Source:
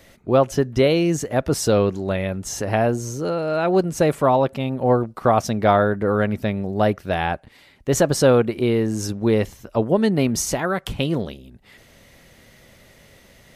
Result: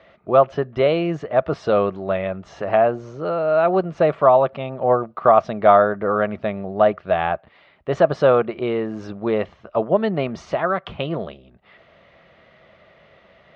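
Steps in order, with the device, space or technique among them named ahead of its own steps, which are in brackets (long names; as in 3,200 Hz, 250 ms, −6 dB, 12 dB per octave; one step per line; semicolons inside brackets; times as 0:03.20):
guitar cabinet (loudspeaker in its box 84–3,400 Hz, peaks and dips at 110 Hz −9 dB, 260 Hz −8 dB, 650 Hz +9 dB, 1,200 Hz +9 dB)
level −2 dB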